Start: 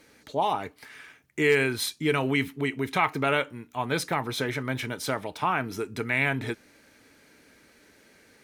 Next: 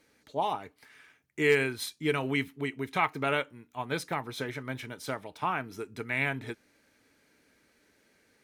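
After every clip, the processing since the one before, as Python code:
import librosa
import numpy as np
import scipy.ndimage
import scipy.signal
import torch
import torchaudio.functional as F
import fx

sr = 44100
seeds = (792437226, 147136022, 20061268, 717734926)

y = fx.upward_expand(x, sr, threshold_db=-34.0, expansion=1.5)
y = y * librosa.db_to_amplitude(-1.5)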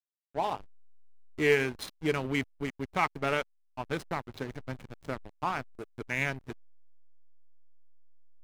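y = fx.backlash(x, sr, play_db=-29.5)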